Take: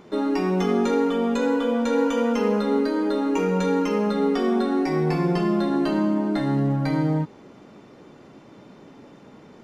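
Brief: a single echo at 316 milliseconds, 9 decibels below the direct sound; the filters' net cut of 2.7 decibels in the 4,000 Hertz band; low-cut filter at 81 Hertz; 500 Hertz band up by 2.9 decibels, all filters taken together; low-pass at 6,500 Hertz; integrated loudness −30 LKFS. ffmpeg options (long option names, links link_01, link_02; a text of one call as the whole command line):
ffmpeg -i in.wav -af "highpass=81,lowpass=6500,equalizer=frequency=500:width_type=o:gain=3.5,equalizer=frequency=4000:width_type=o:gain=-3,aecho=1:1:316:0.355,volume=-9.5dB" out.wav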